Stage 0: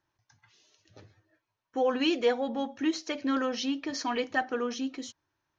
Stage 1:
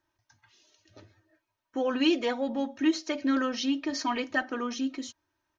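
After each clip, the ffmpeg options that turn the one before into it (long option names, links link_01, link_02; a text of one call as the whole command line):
ffmpeg -i in.wav -af "aecho=1:1:3.2:0.51" out.wav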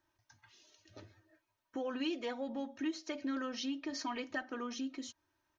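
ffmpeg -i in.wav -af "acompressor=threshold=-42dB:ratio=2,volume=-1dB" out.wav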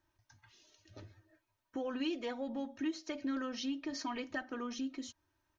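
ffmpeg -i in.wav -af "lowshelf=frequency=130:gain=9.5,volume=-1dB" out.wav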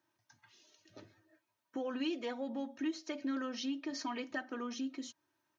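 ffmpeg -i in.wav -af "highpass=frequency=140:width=0.5412,highpass=frequency=140:width=1.3066" out.wav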